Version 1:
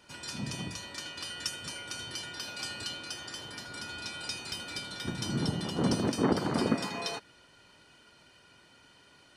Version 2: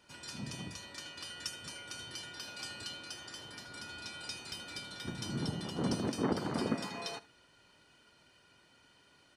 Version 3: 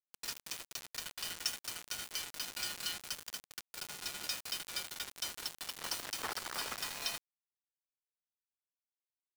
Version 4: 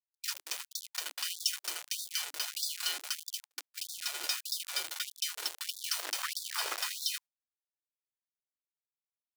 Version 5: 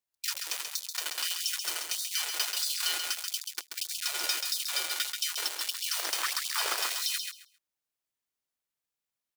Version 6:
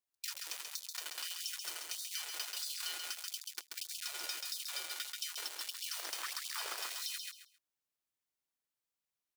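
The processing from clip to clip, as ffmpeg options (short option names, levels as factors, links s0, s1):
-af "aecho=1:1:73:0.106,volume=0.531"
-af "highpass=1300,acrusher=bits=6:mix=0:aa=0.000001,volume=1.68"
-af "agate=range=0.02:threshold=0.00282:ratio=16:detection=peak,afftfilt=real='re*gte(b*sr/1024,280*pow(3500/280,0.5+0.5*sin(2*PI*1.6*pts/sr)))':imag='im*gte(b*sr/1024,280*pow(3500/280,0.5+0.5*sin(2*PI*1.6*pts/sr)))':win_size=1024:overlap=0.75,volume=1.78"
-filter_complex "[0:a]alimiter=limit=0.0708:level=0:latency=1:release=63,asplit=2[s0][s1];[s1]aecho=0:1:134|268|402:0.531|0.0956|0.0172[s2];[s0][s2]amix=inputs=2:normalize=0,volume=1.78"
-af "acompressor=threshold=0.0158:ratio=2.5,volume=0.668"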